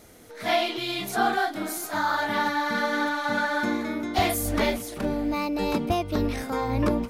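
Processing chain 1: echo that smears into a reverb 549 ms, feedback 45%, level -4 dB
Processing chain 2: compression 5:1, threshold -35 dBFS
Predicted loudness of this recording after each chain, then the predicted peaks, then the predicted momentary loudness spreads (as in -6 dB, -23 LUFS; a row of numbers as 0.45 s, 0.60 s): -25.0 LUFS, -37.0 LUFS; -10.0 dBFS, -24.0 dBFS; 3 LU, 2 LU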